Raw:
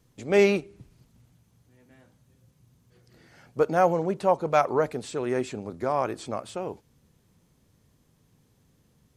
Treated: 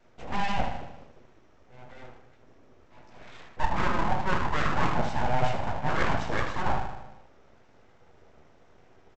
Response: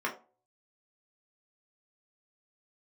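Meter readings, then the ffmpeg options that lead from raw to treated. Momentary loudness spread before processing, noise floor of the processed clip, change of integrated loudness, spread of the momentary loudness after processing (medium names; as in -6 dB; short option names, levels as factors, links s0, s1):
14 LU, -57 dBFS, -3.5 dB, 19 LU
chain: -filter_complex "[0:a]asoftclip=type=hard:threshold=0.168,areverse,acompressor=threshold=0.0224:ratio=6,areverse,equalizer=f=380:w=0.53:g=5,aecho=1:1:77|154|231|308|385|462|539:0.398|0.227|0.129|0.0737|0.042|0.024|0.0137[s0];[1:a]atrim=start_sample=2205[s1];[s0][s1]afir=irnorm=-1:irlink=0,aresample=16000,aeval=exprs='abs(val(0))':c=same,aresample=44100,volume=1.19"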